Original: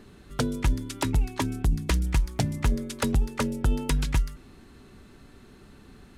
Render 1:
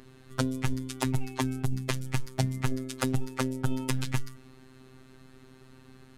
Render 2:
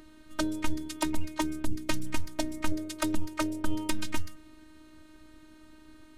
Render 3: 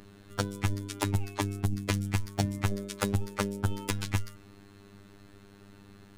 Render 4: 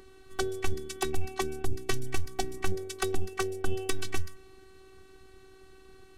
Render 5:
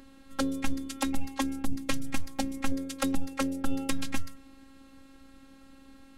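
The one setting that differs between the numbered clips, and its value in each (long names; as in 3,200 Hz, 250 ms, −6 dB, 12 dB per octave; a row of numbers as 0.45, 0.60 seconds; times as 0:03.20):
phases set to zero, frequency: 130, 310, 100, 380, 270 Hertz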